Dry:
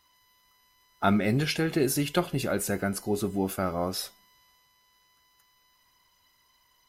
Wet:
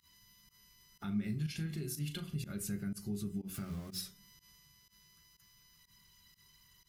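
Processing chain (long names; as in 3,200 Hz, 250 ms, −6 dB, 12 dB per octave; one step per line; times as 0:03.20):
0:03.54–0:04.01: converter with a step at zero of −34.5 dBFS
parametric band 170 Hz +9.5 dB 0.72 octaves
in parallel at +2.5 dB: brickwall limiter −19 dBFS, peak gain reduction 10 dB
on the sum: downward compressor 4 to 1, threshold −34 dBFS, peak gain reduction 18.5 dB
guitar amp tone stack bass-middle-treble 6-0-2
on a send at −5 dB: convolution reverb RT60 0.35 s, pre-delay 3 ms
on the sum: fake sidechain pumping 123 BPM, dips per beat 1, −23 dB, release 84 ms
0:01.07–0:02.36: double-tracking delay 38 ms −10 dB
level +10 dB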